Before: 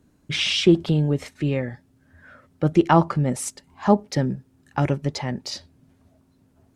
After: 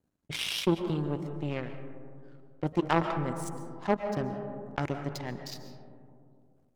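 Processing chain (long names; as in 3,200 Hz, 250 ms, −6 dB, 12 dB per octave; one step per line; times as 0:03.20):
power curve on the samples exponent 2
on a send at −14 dB: convolution reverb RT60 1.4 s, pre-delay 95 ms
on the sum: envelope flattener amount 50%
level −6.5 dB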